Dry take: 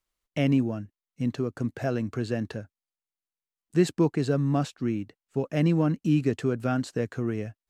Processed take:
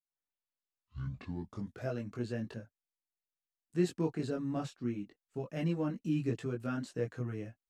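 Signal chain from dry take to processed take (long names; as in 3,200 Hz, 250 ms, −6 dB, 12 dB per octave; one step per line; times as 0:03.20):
turntable start at the beginning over 1.93 s
multi-voice chorus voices 6, 0.29 Hz, delay 21 ms, depth 4.5 ms
level −6.5 dB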